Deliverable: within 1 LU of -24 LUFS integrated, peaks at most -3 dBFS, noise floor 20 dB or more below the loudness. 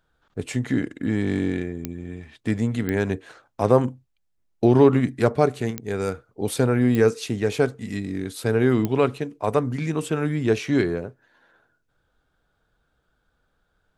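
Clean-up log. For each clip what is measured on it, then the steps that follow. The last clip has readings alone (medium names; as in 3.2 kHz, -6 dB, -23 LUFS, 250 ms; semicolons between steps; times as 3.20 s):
clicks found 5; loudness -23.0 LUFS; peak level -3.5 dBFS; loudness target -24.0 LUFS
-> de-click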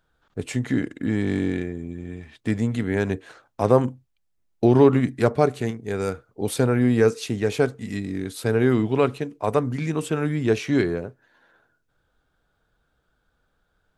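clicks found 0; loudness -23.0 LUFS; peak level -3.5 dBFS; loudness target -24.0 LUFS
-> trim -1 dB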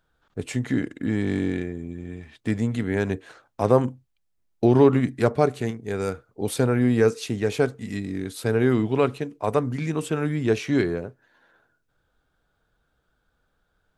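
loudness -24.0 LUFS; peak level -4.5 dBFS; noise floor -72 dBFS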